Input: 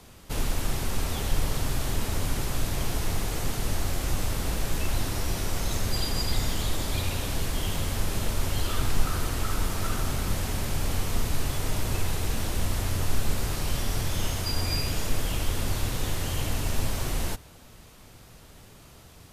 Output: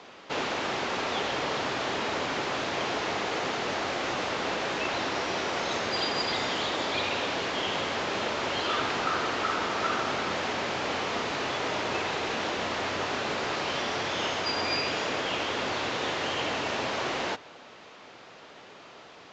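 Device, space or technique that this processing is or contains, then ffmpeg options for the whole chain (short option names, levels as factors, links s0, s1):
telephone: -af "highpass=400,lowpass=3400,volume=2.51" -ar 16000 -c:a pcm_mulaw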